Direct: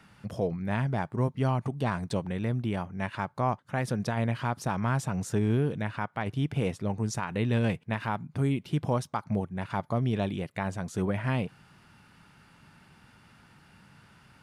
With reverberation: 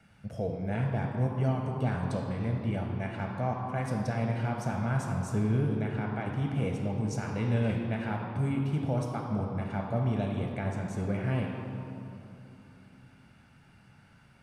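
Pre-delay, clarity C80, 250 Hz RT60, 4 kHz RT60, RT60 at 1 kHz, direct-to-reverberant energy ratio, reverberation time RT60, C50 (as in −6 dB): 5 ms, 4.0 dB, 3.8 s, 1.6 s, 2.7 s, 1.0 dB, 2.8 s, 2.5 dB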